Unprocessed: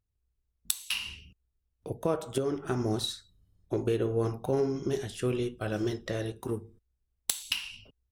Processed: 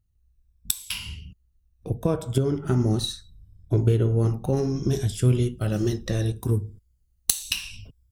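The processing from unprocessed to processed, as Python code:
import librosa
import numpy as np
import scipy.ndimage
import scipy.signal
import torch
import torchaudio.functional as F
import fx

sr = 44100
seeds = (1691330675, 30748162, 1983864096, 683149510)

y = fx.spec_ripple(x, sr, per_octave=1.7, drift_hz=-0.7, depth_db=7)
y = fx.bass_treble(y, sr, bass_db=14, treble_db=fx.steps((0.0, 3.0), (4.55, 9.0)))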